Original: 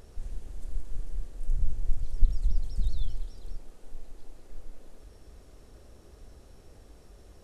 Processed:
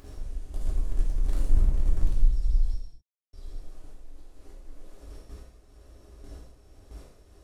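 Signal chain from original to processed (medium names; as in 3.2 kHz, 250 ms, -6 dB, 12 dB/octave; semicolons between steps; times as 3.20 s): gate with hold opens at -39 dBFS; upward compressor, threshold -33 dBFS; 0.54–2.14 s: power-law waveshaper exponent 0.5; 2.74–3.33 s: mute; 3.92–4.65 s: compression, threshold -36 dBFS, peak gain reduction 7.5 dB; gated-style reverb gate 290 ms falling, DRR -4.5 dB; trim -6 dB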